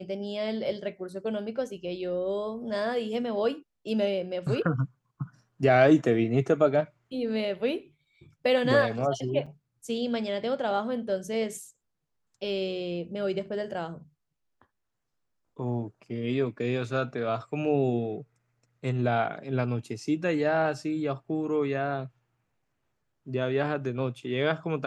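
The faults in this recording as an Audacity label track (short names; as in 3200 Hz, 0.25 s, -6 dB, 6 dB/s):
9.460000	9.470000	gap 5.1 ms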